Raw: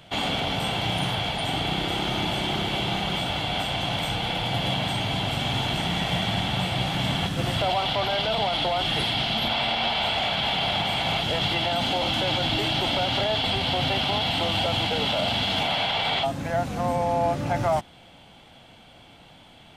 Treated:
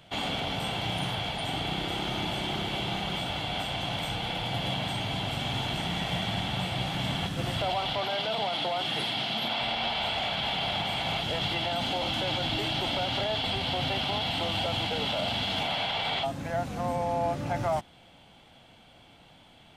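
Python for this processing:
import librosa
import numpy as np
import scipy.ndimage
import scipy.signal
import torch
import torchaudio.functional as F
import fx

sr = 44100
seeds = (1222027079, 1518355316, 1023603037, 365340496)

y = fx.highpass(x, sr, hz=150.0, slope=12, at=(7.98, 9.61))
y = y * librosa.db_to_amplitude(-5.0)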